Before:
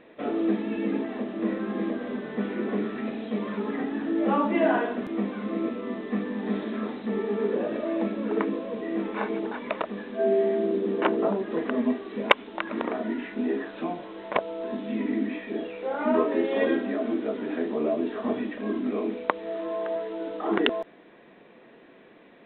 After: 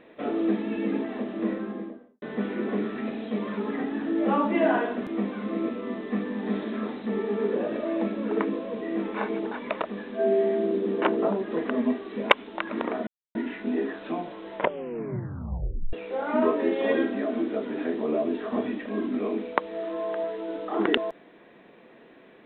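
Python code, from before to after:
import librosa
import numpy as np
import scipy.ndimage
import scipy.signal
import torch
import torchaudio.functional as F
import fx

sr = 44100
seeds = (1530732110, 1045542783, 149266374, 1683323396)

y = fx.studio_fade_out(x, sr, start_s=1.38, length_s=0.84)
y = fx.edit(y, sr, fx.insert_silence(at_s=13.07, length_s=0.28),
    fx.tape_stop(start_s=14.27, length_s=1.38), tone=tone)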